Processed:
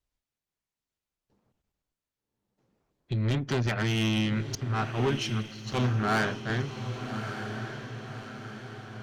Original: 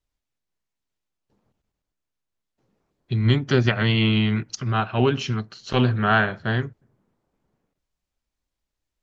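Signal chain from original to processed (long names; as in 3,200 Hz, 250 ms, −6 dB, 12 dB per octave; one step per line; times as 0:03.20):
tube saturation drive 21 dB, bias 0.35
feedback delay with all-pass diffusion 1,188 ms, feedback 52%, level −8 dB
0:04.55–0:06.50: multiband upward and downward expander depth 70%
level −2 dB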